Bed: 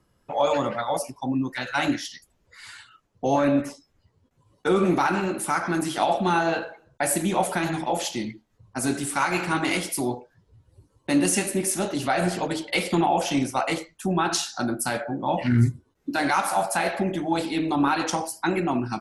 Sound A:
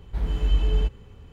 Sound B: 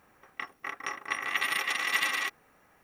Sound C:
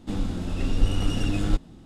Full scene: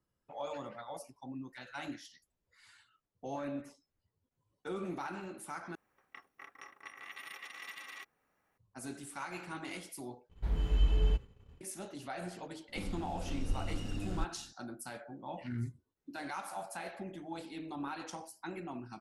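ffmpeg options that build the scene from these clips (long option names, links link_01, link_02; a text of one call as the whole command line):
ffmpeg -i bed.wav -i cue0.wav -i cue1.wav -i cue2.wav -filter_complex "[0:a]volume=-18.5dB[link_01];[2:a]alimiter=limit=-19.5dB:level=0:latency=1:release=245[link_02];[1:a]agate=range=-33dB:threshold=-40dB:ratio=3:release=100:detection=peak[link_03];[3:a]bandreject=frequency=3400:width=12[link_04];[link_01]asplit=3[link_05][link_06][link_07];[link_05]atrim=end=5.754[link_08];[link_02]atrim=end=2.83,asetpts=PTS-STARTPTS,volume=-15dB[link_09];[link_06]atrim=start=8.576:end=10.294[link_10];[link_03]atrim=end=1.32,asetpts=PTS-STARTPTS,volume=-6.5dB[link_11];[link_07]atrim=start=11.606[link_12];[link_04]atrim=end=1.85,asetpts=PTS-STARTPTS,volume=-13.5dB,afade=type=in:duration=0.004:curve=hsin,afade=type=out:start_time=1.846:duration=0.004:curve=hsin,adelay=559188S[link_13];[link_08][link_09]acrossfade=duration=0.004:curve1=hsin:curve2=hsin[link_14];[link_14][link_10]acrossfade=duration=0.004:curve1=hsin:curve2=hsin[link_15];[link_15][link_11]acrossfade=duration=0.004:curve1=hsin:curve2=hsin[link_16];[link_16][link_12]acrossfade=duration=0.004:curve1=hsin:curve2=hsin[link_17];[link_17][link_13]amix=inputs=2:normalize=0" out.wav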